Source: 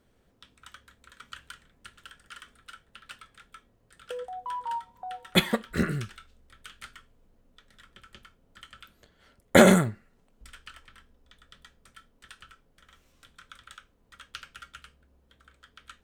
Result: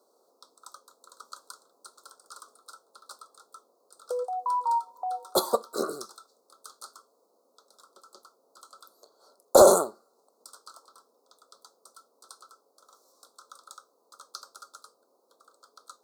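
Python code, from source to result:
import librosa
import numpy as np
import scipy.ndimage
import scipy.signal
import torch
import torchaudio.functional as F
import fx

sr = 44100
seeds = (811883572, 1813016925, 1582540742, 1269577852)

y = scipy.signal.sosfilt(scipy.signal.butter(4, 410.0, 'highpass', fs=sr, output='sos'), x)
y = 10.0 ** (-12.5 / 20.0) * np.tanh(y / 10.0 ** (-12.5 / 20.0))
y = scipy.signal.sosfilt(scipy.signal.ellip(3, 1.0, 40, [1200.0, 4300.0], 'bandstop', fs=sr, output='sos'), y)
y = y * librosa.db_to_amplitude(7.5)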